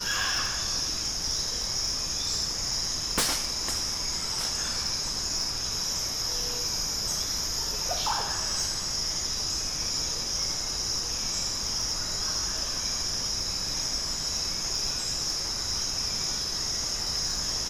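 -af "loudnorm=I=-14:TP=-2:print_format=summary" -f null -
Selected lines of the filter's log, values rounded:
Input Integrated:    -27.1 LUFS
Input True Peak:     -17.4 dBTP
Input LRA:             0.6 LU
Input Threshold:     -37.1 LUFS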